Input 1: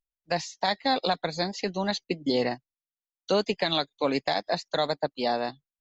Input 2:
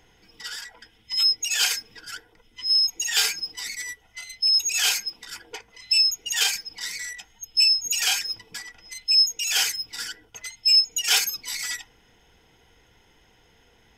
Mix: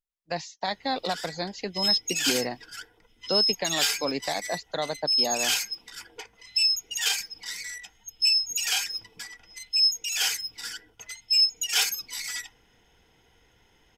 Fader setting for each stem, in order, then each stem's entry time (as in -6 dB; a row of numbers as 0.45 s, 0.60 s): -3.5 dB, -3.5 dB; 0.00 s, 0.65 s